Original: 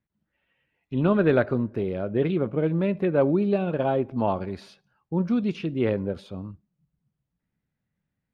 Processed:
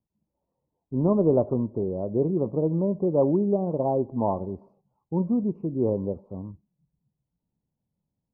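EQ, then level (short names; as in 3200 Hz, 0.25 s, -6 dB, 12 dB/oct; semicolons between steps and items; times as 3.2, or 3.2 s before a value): elliptic low-pass 1000 Hz, stop band 40 dB; 0.0 dB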